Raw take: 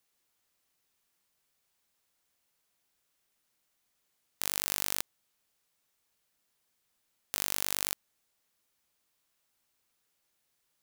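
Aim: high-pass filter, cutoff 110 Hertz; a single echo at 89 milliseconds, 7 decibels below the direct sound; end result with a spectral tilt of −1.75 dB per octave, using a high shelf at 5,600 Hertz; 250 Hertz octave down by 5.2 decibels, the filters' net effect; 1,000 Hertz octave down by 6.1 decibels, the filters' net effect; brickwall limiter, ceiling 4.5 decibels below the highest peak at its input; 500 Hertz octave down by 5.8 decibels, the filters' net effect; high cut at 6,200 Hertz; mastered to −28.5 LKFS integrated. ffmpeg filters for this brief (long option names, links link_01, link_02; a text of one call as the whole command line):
ffmpeg -i in.wav -af "highpass=110,lowpass=6200,equalizer=frequency=250:width_type=o:gain=-5,equalizer=frequency=500:width_type=o:gain=-4,equalizer=frequency=1000:width_type=o:gain=-6.5,highshelf=frequency=5600:gain=-3.5,alimiter=limit=-20dB:level=0:latency=1,aecho=1:1:89:0.447,volume=15.5dB" out.wav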